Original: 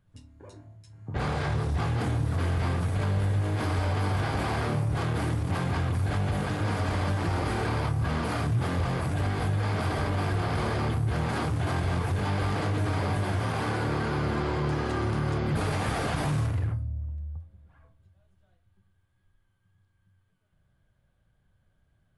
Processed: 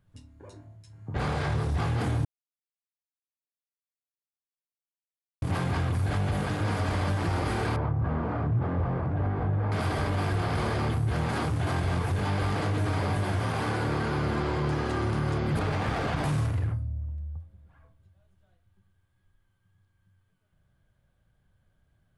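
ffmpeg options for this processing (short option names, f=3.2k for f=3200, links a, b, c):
-filter_complex "[0:a]asettb=1/sr,asplit=3[a][b][c];[a]atrim=end=7.764[d];[b]atrim=start=7.76:end=9.72,asetpts=PTS-STARTPTS,afade=t=in:d=0.004:c=qsin,afade=t=out:st=1.956:d=0.004:c=qsin,lowpass=1.2k[e];[c]atrim=start=9.716[f];[d][e]acrossfade=d=0.004:c1=hsin:c2=qsin[g];[g][f]acrossfade=d=0.004:c1=qsin:c2=hsin,asettb=1/sr,asplit=3[h][i][j];[h]atrim=end=15.594[k];[i]atrim=start=15.59:end=16.24,asetpts=PTS-STARTPTS,afade=t=in:d=0.004:c=qsin,afade=t=out:st=0.646:d=0.004:c=qsin,adynamicsmooth=sensitivity=4.5:basefreq=4k[l];[j]atrim=start=16.236[m];[k][l]acrossfade=d=0.004:c1=hsin:c2=qsin[n];[n][m]acrossfade=d=0.004:c1=qsin:c2=hsin,asplit=3[o][p][q];[o]atrim=end=2.25,asetpts=PTS-STARTPTS,afade=t=out:st=2.246:d=0.004:c=hsin[r];[p]atrim=start=2.25:end=5.42,asetpts=PTS-STARTPTS,volume=0[s];[q]atrim=start=5.42,asetpts=PTS-STARTPTS,afade=t=in:d=0.004:c=hsin[t];[r][s][t]concat=n=3:v=0:a=1"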